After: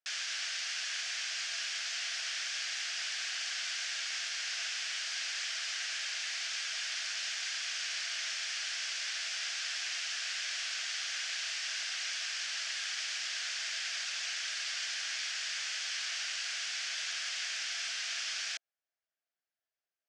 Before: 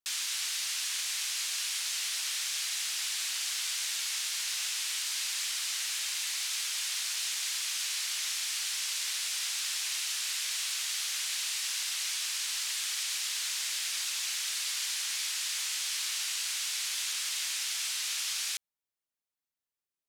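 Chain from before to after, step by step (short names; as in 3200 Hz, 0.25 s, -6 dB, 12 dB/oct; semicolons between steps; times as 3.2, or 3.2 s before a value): speaker cabinet 440–5800 Hz, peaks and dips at 670 Hz +9 dB, 980 Hz -9 dB, 1600 Hz +7 dB, 3900 Hz -6 dB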